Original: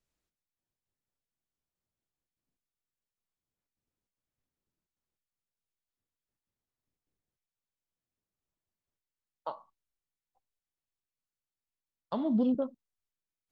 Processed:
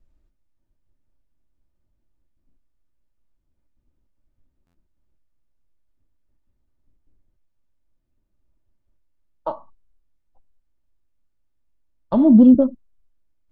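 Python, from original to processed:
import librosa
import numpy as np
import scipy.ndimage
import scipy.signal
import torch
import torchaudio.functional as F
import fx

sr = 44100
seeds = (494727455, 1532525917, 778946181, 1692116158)

y = fx.tilt_eq(x, sr, slope=-4.0)
y = y + 0.42 * np.pad(y, (int(3.3 * sr / 1000.0), 0))[:len(y)]
y = fx.buffer_glitch(y, sr, at_s=(4.66,), block=512, repeats=6)
y = y * 10.0 ** (8.0 / 20.0)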